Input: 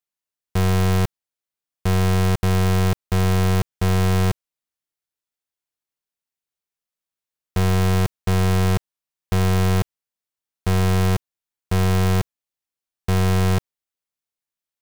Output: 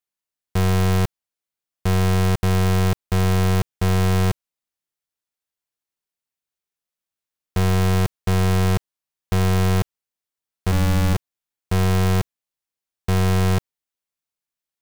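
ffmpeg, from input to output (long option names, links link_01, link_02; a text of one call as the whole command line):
ffmpeg -i in.wav -filter_complex "[0:a]asplit=3[link_01][link_02][link_03];[link_01]afade=type=out:start_time=10.71:duration=0.02[link_04];[link_02]afreqshift=-180,afade=type=in:start_time=10.71:duration=0.02,afade=type=out:start_time=11.13:duration=0.02[link_05];[link_03]afade=type=in:start_time=11.13:duration=0.02[link_06];[link_04][link_05][link_06]amix=inputs=3:normalize=0" out.wav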